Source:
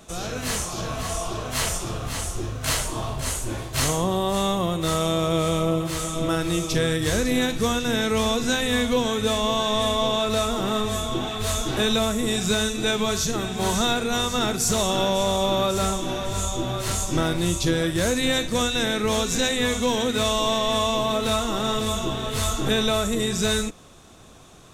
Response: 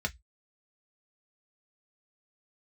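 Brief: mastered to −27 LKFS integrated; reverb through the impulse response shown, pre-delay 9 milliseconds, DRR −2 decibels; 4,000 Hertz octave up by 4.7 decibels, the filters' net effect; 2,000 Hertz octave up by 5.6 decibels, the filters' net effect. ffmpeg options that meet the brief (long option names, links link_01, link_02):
-filter_complex "[0:a]equalizer=frequency=2000:width_type=o:gain=6.5,equalizer=frequency=4000:width_type=o:gain=3.5,asplit=2[link_01][link_02];[1:a]atrim=start_sample=2205,adelay=9[link_03];[link_02][link_03]afir=irnorm=-1:irlink=0,volume=-3dB[link_04];[link_01][link_04]amix=inputs=2:normalize=0,volume=-10.5dB"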